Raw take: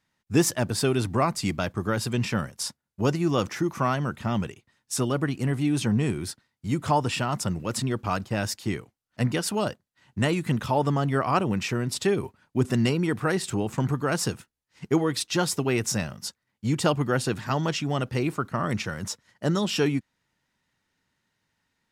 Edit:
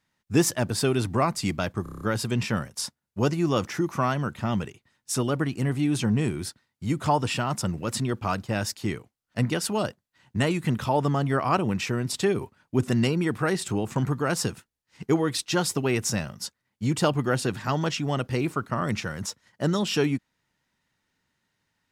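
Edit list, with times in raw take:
0:01.83: stutter 0.03 s, 7 plays

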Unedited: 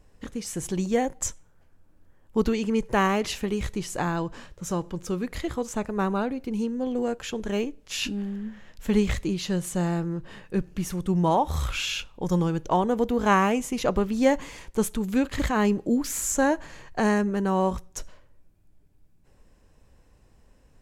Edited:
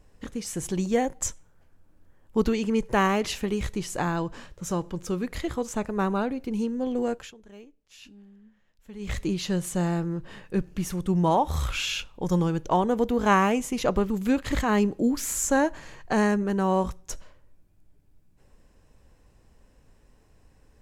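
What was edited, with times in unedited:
0:07.13–0:09.20: duck −20 dB, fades 0.21 s
0:14.10–0:14.97: remove

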